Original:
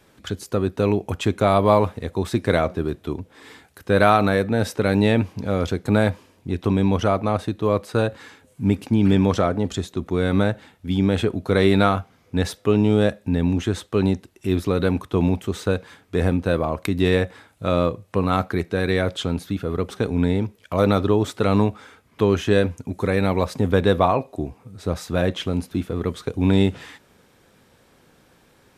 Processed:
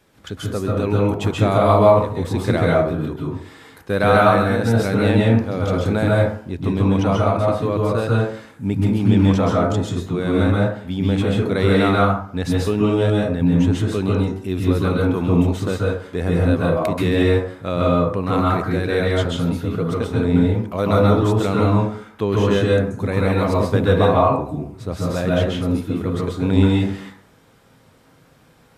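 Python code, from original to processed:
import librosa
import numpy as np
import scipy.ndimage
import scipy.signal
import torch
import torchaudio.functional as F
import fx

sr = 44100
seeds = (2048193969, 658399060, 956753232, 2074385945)

y = fx.rev_plate(x, sr, seeds[0], rt60_s=0.56, hf_ratio=0.5, predelay_ms=120, drr_db=-4.0)
y = F.gain(torch.from_numpy(y), -3.0).numpy()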